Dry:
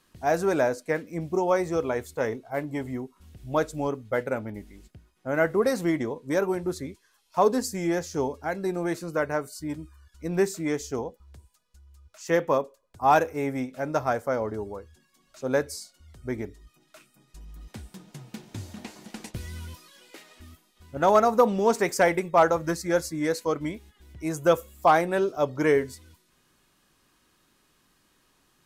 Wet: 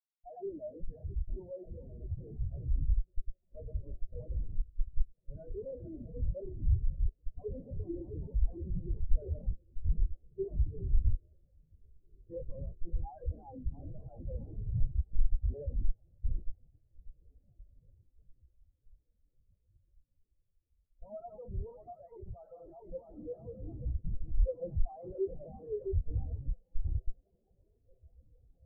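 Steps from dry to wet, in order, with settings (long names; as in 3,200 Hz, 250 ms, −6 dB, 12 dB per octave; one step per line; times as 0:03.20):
feedback delay that plays each chunk backwards 332 ms, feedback 75%, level −8.5 dB
low-pass that shuts in the quiet parts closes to 3,000 Hz, open at −18 dBFS
high-pass filter 730 Hz 12 dB per octave
dynamic equaliser 2,000 Hz, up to +5 dB, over −45 dBFS, Q 1.5
in parallel at −1.5 dB: downward compressor 8 to 1, threshold −33 dBFS, peak gain reduction 18 dB
on the sum: transient designer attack −2 dB, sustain +10 dB
comparator with hysteresis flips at −25 dBFS
head-to-tape spacing loss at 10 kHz 39 dB
on a send: feedback delay with all-pass diffusion 1,996 ms, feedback 75%, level −7.5 dB
on the sum: every bin expanded away from the loudest bin 4 to 1
level +3.5 dB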